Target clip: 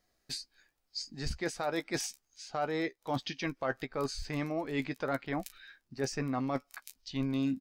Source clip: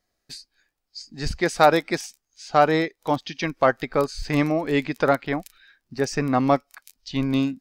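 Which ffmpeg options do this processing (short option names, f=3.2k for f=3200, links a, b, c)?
-filter_complex "[0:a]alimiter=limit=-11.5dB:level=0:latency=1:release=472,areverse,acompressor=threshold=-31dB:ratio=6,areverse,asplit=2[a][b];[b]adelay=15,volume=-11.5dB[c];[a][c]amix=inputs=2:normalize=0"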